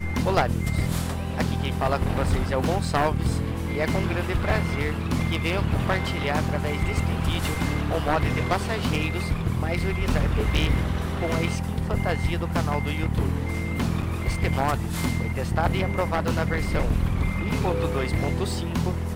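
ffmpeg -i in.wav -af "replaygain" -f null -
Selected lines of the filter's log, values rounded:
track_gain = +8.4 dB
track_peak = 0.367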